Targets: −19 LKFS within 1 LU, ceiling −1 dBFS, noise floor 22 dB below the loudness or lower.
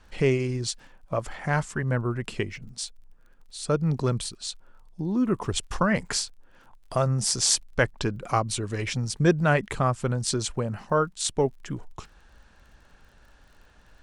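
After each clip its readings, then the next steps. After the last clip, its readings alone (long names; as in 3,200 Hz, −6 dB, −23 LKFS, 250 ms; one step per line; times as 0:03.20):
crackle rate 37 per second; integrated loudness −27.0 LKFS; sample peak −4.0 dBFS; target loudness −19.0 LKFS
→ click removal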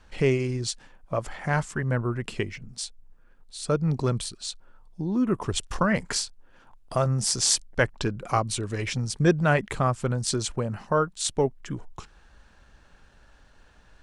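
crackle rate 0.071 per second; integrated loudness −27.0 LKFS; sample peak −4.0 dBFS; target loudness −19.0 LKFS
→ level +8 dB
brickwall limiter −1 dBFS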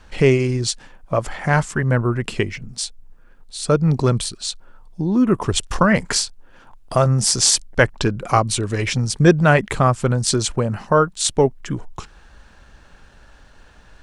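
integrated loudness −19.0 LKFS; sample peak −1.0 dBFS; background noise floor −48 dBFS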